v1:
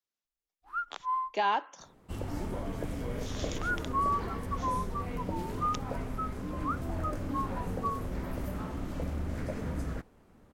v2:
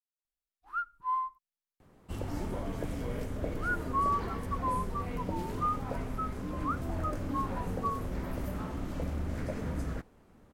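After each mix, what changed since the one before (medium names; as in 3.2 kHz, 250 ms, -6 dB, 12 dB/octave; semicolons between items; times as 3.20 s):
speech: muted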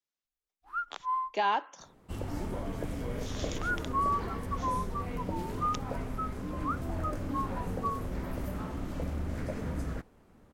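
speech: unmuted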